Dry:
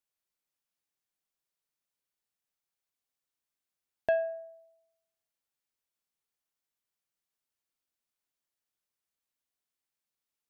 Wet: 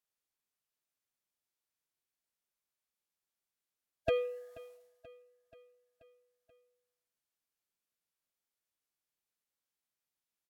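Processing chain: formant-preserving pitch shift -5 st; feedback delay 482 ms, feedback 60%, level -20.5 dB; trim -2 dB

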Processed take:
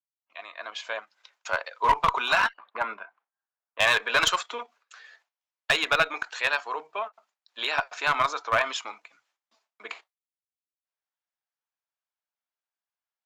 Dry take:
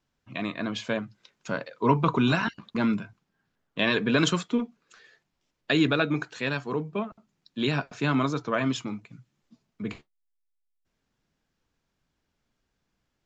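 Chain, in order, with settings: fade-in on the opening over 1.56 s; 2.49–3.80 s: low-pass 1.7 kHz 12 dB/octave; gate with hold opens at -57 dBFS; high-pass 710 Hz 24 dB/octave; tilt EQ -1.5 dB/octave; in parallel at -2 dB: level held to a coarse grid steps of 16 dB; on the sum: one-sided clip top -22 dBFS; endings held to a fixed fall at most 510 dB/s; trim +4.5 dB

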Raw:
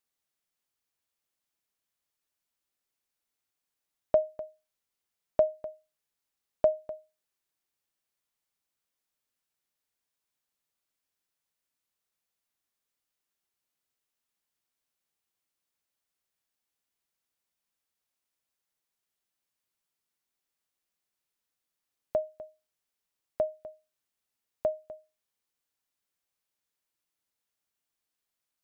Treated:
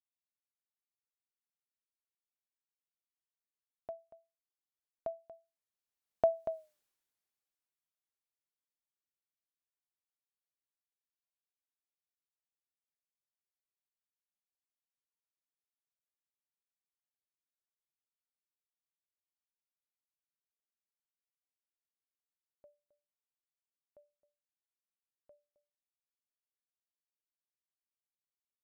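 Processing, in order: Doppler pass-by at 6.64 s, 21 m/s, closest 2.9 m; trim +6 dB

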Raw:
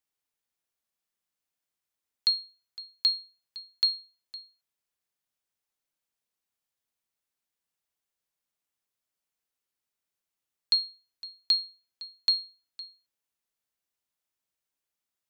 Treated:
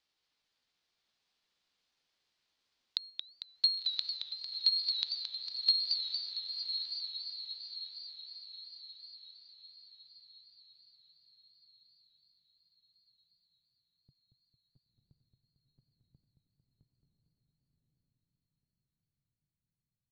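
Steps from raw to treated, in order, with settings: low-pass that closes with the level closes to 540 Hz, closed at -30.5 dBFS; in parallel at +1.5 dB: level held to a coarse grid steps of 14 dB; on the sum: peak limiter -23.5 dBFS, peak gain reduction 12 dB; low-pass sweep 4.3 kHz -> 140 Hz, 4.96–6.05 s; tempo 0.76×; on a send: echo that smears into a reverb 1049 ms, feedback 47%, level -6 dB; on the sum: modulated delay 227 ms, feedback 61%, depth 154 cents, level -6.5 dB; trim +2.5 dB

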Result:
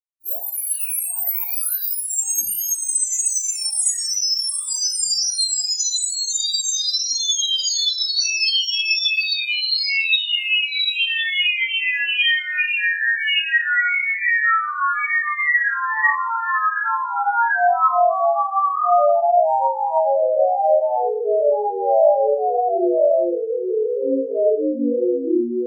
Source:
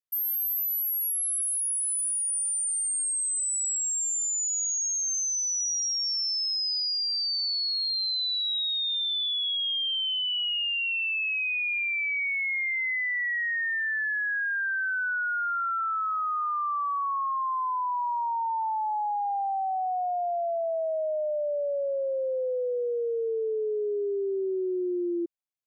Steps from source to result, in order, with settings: in parallel at +3 dB: gain riding within 4 dB; on the sum: granulator 251 ms, grains 14 per s, spray 435 ms, pitch spread up and down by 7 st; de-hum 256.1 Hz, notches 30; reverberation RT60 0.40 s, pre-delay 115 ms

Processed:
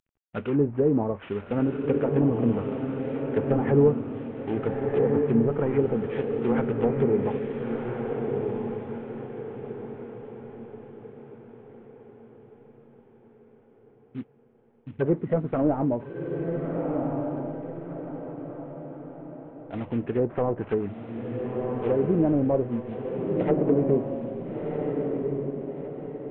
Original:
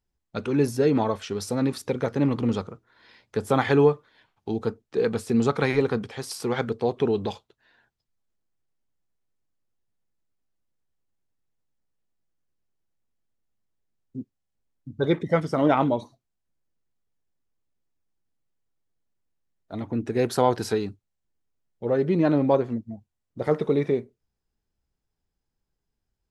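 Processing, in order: CVSD coder 16 kbps; low-pass that closes with the level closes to 650 Hz, closed at -20 dBFS; echo that smears into a reverb 1363 ms, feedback 43%, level -3 dB

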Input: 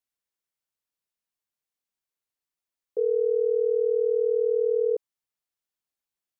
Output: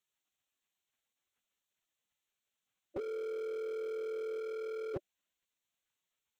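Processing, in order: local Wiener filter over 9 samples; spectral gate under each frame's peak -10 dB weak; 3.07–4.40 s: bass shelf 350 Hz +4 dB; slew-rate limiter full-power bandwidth 1.1 Hz; trim +17.5 dB

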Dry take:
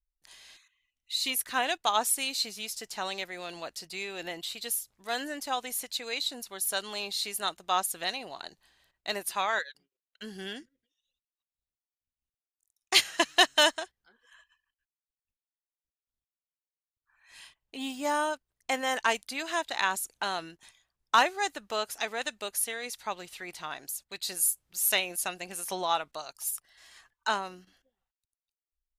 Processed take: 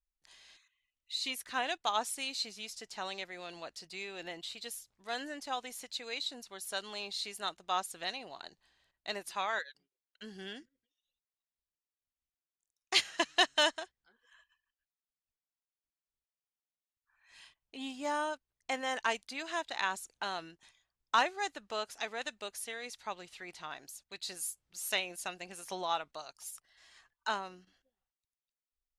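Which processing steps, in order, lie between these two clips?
low-pass 7.6 kHz 12 dB/octave; trim -5.5 dB

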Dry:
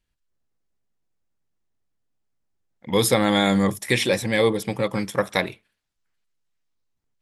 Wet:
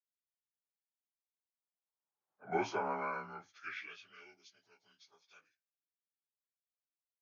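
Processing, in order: frequency axis rescaled in octaves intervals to 89%; Doppler pass-by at 2.35 s, 53 m/s, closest 4.8 m; band-pass sweep 910 Hz -> 4.3 kHz, 2.90–4.43 s; trim +8.5 dB

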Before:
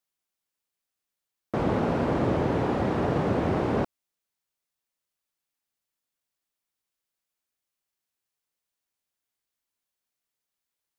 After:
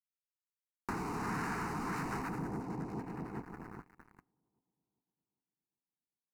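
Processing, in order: two-band feedback delay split 460 Hz, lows 689 ms, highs 116 ms, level -8.5 dB; waveshaping leveller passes 5; two-slope reverb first 0.26 s, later 1.6 s, from -19 dB, DRR 15 dB; rotary cabinet horn 0.7 Hz, later 6.3 Hz, at 3.08 s; speed mistake 45 rpm record played at 78 rpm; compression 6:1, threshold -28 dBFS, peak gain reduction 13 dB; static phaser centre 1.4 kHz, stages 4; trim -4.5 dB

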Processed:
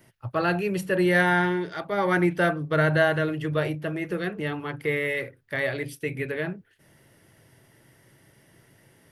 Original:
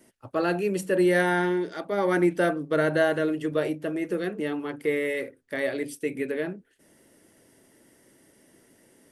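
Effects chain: graphic EQ 125/250/500/8000 Hz +11/-11/-5/-11 dB; trim +5 dB

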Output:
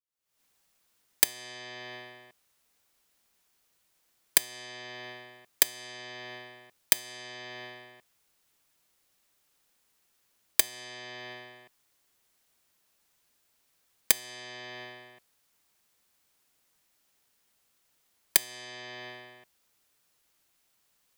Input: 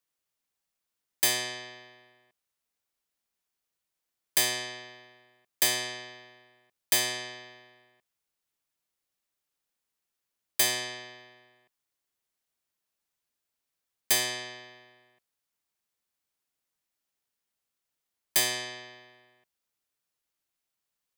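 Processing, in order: recorder AGC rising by 72 dB/s; trim -17 dB

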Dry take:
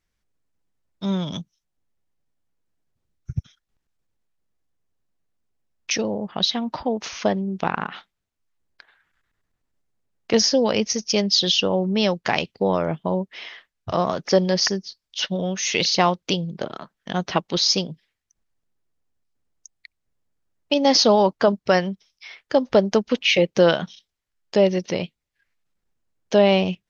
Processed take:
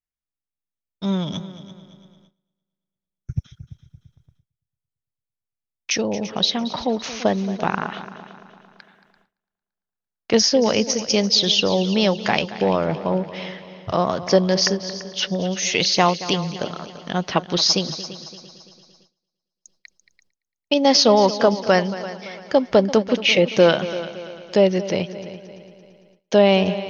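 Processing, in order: multi-head delay 113 ms, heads second and third, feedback 47%, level -15.5 dB; gate with hold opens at -45 dBFS; trim +1.5 dB

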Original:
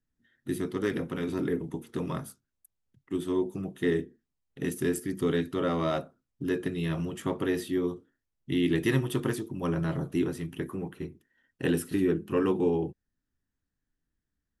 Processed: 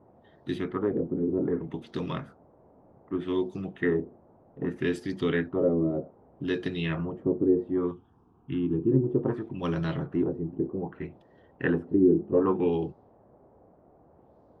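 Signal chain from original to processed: LFO low-pass sine 0.64 Hz 340–4500 Hz; band noise 55–750 Hz -58 dBFS; 7.91–8.92 s: static phaser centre 2.9 kHz, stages 8

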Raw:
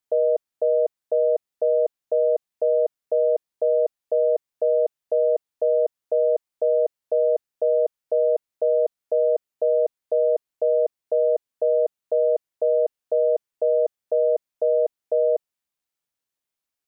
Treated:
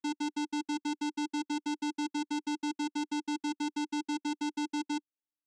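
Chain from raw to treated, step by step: comb filter that takes the minimum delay 0.88 ms; wide varispeed 3.09×; vocoder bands 4, square 296 Hz; trim -7.5 dB

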